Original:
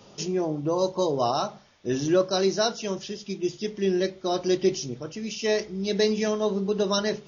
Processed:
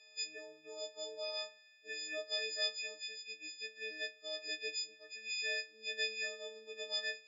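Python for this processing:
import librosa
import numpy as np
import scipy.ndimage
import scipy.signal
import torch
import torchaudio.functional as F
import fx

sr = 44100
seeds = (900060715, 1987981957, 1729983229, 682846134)

y = fx.freq_snap(x, sr, grid_st=6)
y = fx.vowel_filter(y, sr, vowel='e')
y = np.diff(y, prepend=0.0)
y = F.gain(torch.from_numpy(y), 9.5).numpy()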